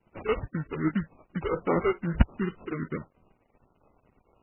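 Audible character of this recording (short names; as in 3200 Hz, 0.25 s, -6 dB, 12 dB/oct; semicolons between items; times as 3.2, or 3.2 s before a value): a quantiser's noise floor 10-bit, dither none; phasing stages 6, 2.5 Hz, lowest notch 180–1700 Hz; aliases and images of a low sample rate 1700 Hz, jitter 20%; MP3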